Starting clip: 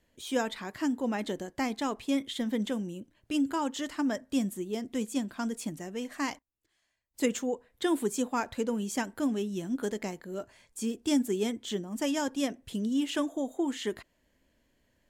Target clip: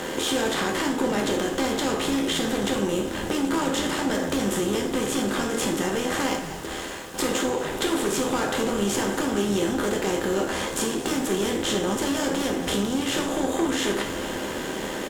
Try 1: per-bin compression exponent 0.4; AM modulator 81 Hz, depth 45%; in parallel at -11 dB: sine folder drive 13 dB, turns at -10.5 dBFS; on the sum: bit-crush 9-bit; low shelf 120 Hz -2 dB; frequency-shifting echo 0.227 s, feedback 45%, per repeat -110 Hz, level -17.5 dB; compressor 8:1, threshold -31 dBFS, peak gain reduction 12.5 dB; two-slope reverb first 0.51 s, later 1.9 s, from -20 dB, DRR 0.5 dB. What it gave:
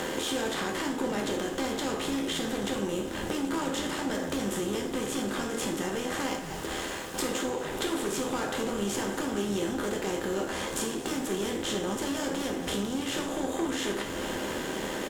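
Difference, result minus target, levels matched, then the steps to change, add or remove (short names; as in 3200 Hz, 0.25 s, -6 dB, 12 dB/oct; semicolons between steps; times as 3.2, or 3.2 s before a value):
compressor: peak gain reduction +6 dB
change: compressor 8:1, threshold -24 dBFS, peak gain reduction 6.5 dB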